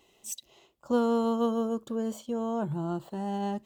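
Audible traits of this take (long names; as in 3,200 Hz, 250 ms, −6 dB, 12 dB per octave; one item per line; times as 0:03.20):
background noise floor −66 dBFS
spectral slope −6.0 dB per octave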